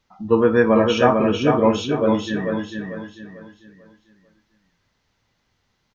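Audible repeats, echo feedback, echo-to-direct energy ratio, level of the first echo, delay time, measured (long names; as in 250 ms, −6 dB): 4, 36%, −4.0 dB, −4.5 dB, 445 ms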